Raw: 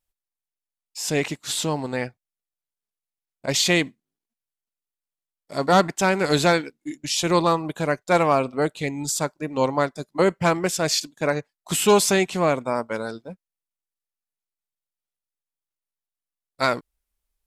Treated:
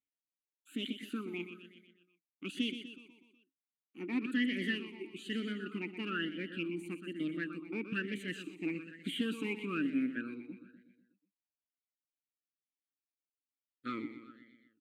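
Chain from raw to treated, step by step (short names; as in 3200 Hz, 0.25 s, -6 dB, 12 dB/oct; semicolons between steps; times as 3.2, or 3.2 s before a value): speed glide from 147% -> 89%; bell 730 Hz -13 dB 0.7 oct; in parallel at +1 dB: limiter -17 dBFS, peak gain reduction 9 dB; on the sum: fixed phaser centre 2300 Hz, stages 4; one-sided clip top -15 dBFS; on a send: feedback echo 0.123 s, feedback 56%, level -10 dB; on the sum: vowel sweep i-u 1.1 Hz; gain -2 dB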